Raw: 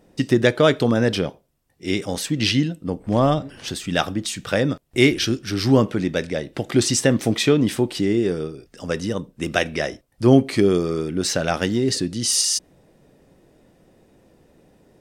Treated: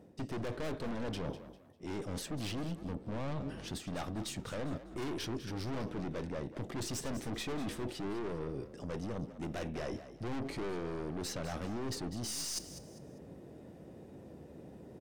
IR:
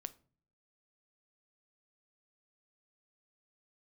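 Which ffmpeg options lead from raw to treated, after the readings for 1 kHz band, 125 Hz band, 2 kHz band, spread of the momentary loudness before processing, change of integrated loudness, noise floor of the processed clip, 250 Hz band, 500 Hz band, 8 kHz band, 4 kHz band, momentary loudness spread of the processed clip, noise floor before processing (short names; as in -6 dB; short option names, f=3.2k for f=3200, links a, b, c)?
-16.0 dB, -17.0 dB, -21.0 dB, 11 LU, -19.0 dB, -54 dBFS, -19.0 dB, -20.0 dB, -18.5 dB, -19.5 dB, 13 LU, -61 dBFS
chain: -filter_complex "[0:a]highpass=f=59:w=0.5412,highpass=f=59:w=1.3066,tiltshelf=f=970:g=5.5,aeval=exprs='(tanh(17.8*val(0)+0.5)-tanh(0.5))/17.8':c=same,areverse,acompressor=threshold=-40dB:ratio=4,areverse,asplit=4[a][b][c][d];[b]adelay=199,afreqshift=46,volume=-13dB[e];[c]adelay=398,afreqshift=92,volume=-23.2dB[f];[d]adelay=597,afreqshift=138,volume=-33.3dB[g];[a][e][f][g]amix=inputs=4:normalize=0,volume=1.5dB"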